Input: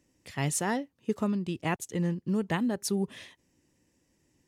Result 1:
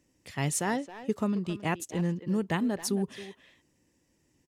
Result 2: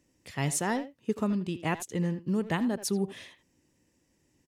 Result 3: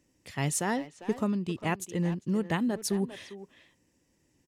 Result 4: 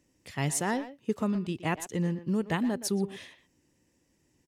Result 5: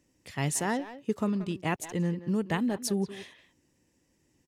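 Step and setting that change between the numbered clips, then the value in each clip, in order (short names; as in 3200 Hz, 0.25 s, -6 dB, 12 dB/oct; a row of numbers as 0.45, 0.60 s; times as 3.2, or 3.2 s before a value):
speakerphone echo, time: 270, 80, 400, 120, 180 ms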